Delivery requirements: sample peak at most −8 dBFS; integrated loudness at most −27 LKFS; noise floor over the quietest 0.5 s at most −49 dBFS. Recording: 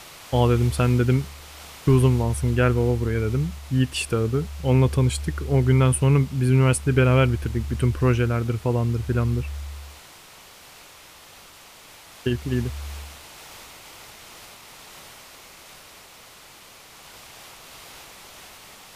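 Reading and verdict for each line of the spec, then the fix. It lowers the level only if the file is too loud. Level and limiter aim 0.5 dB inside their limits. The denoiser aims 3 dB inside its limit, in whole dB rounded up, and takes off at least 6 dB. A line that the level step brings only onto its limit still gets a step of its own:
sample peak −6.5 dBFS: out of spec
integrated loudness −22.0 LKFS: out of spec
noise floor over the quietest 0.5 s −47 dBFS: out of spec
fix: level −5.5 dB

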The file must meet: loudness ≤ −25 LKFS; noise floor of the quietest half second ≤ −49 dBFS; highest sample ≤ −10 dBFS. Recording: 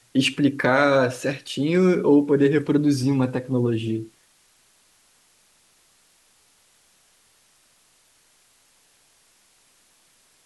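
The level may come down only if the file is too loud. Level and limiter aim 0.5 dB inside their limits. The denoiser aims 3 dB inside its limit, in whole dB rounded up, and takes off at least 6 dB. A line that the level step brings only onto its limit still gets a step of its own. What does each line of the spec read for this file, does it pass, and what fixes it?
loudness −21.0 LKFS: out of spec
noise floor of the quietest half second −60 dBFS: in spec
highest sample −4.5 dBFS: out of spec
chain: level −4.5 dB
brickwall limiter −10.5 dBFS

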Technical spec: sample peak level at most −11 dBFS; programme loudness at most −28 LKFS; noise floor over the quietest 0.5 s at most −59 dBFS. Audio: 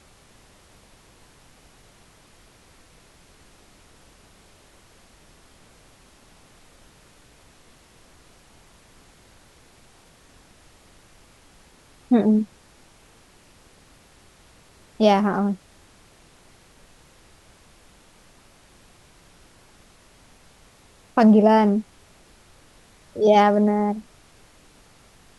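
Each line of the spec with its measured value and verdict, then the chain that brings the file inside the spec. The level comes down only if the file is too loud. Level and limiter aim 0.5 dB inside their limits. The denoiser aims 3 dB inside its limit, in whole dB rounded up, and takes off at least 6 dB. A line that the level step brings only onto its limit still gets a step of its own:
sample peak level −5.0 dBFS: out of spec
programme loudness −19.5 LKFS: out of spec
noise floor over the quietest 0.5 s −53 dBFS: out of spec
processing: level −9 dB

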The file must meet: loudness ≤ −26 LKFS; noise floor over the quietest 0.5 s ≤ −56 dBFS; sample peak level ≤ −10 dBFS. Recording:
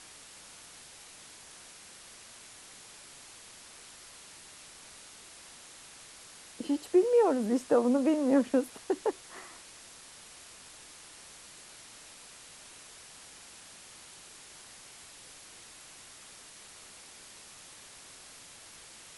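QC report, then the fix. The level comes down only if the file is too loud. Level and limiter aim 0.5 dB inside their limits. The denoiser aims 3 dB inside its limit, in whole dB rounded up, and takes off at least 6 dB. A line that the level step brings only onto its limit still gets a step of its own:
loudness −28.0 LKFS: in spec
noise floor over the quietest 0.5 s −52 dBFS: out of spec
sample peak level −14.0 dBFS: in spec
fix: broadband denoise 7 dB, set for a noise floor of −52 dBFS

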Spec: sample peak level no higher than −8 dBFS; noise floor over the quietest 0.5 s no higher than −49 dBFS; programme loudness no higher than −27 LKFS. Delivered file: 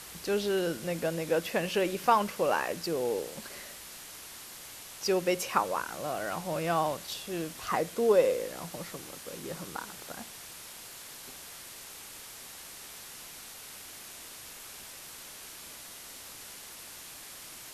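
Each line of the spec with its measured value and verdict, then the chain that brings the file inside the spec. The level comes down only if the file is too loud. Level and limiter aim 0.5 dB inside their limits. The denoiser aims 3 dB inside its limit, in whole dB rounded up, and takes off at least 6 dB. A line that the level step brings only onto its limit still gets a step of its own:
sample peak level −11.0 dBFS: in spec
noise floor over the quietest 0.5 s −47 dBFS: out of spec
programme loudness −33.5 LKFS: in spec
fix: broadband denoise 6 dB, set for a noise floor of −47 dBFS

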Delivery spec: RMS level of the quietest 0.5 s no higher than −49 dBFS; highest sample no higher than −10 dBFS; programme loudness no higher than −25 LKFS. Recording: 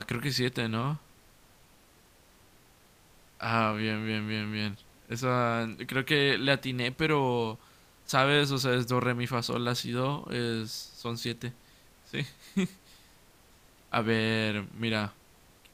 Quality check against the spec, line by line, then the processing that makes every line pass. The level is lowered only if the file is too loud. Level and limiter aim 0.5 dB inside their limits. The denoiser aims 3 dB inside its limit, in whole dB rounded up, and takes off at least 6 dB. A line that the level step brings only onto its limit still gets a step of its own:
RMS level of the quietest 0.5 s −60 dBFS: in spec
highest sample −8.0 dBFS: out of spec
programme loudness −29.5 LKFS: in spec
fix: brickwall limiter −10.5 dBFS

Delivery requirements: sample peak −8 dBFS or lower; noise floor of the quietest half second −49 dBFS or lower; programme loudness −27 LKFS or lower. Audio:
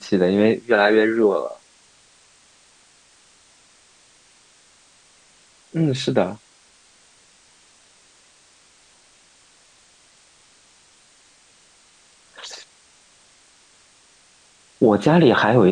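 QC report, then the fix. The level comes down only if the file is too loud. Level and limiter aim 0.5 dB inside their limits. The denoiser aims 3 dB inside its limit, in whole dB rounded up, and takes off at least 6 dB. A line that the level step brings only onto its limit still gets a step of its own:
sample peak −4.0 dBFS: out of spec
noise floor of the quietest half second −55 dBFS: in spec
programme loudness −18.0 LKFS: out of spec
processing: level −9.5 dB

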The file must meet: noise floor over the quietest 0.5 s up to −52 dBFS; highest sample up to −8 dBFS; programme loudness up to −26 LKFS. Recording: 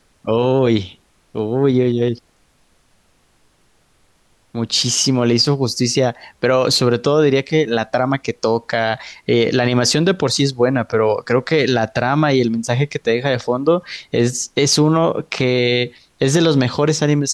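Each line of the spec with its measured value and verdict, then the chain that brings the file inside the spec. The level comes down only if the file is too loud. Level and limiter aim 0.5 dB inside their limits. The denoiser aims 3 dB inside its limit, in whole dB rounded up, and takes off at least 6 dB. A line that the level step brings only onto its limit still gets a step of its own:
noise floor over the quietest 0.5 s −57 dBFS: in spec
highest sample −4.5 dBFS: out of spec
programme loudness −17.0 LKFS: out of spec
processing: level −9.5 dB

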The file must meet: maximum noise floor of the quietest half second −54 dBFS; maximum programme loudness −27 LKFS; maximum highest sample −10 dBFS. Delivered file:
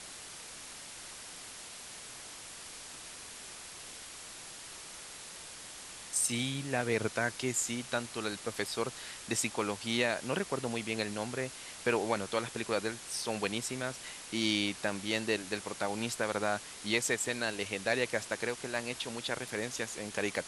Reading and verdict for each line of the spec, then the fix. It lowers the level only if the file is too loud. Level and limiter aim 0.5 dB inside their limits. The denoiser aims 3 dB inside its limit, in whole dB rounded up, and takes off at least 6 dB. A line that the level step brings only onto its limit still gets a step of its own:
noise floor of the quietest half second −47 dBFS: out of spec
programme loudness −35.0 LKFS: in spec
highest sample −15.0 dBFS: in spec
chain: broadband denoise 10 dB, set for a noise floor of −47 dBFS

